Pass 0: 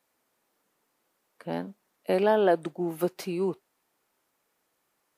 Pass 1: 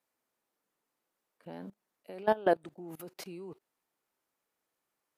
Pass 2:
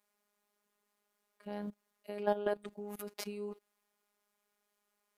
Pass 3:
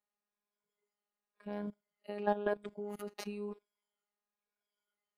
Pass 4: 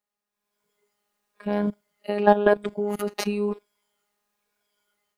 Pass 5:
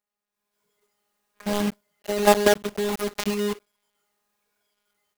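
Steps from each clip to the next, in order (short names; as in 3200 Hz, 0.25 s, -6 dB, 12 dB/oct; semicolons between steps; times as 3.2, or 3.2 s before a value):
level quantiser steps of 21 dB; gain -1.5 dB
limiter -23.5 dBFS, peak gain reduction 10 dB; robotiser 206 Hz; gain +5 dB
moving spectral ripple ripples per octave 1.7, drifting -0.98 Hz, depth 7 dB; LPF 3200 Hz 6 dB/oct; spectral noise reduction 13 dB; gain +1 dB
AGC gain up to 12 dB; gain +3.5 dB
block floating point 3-bit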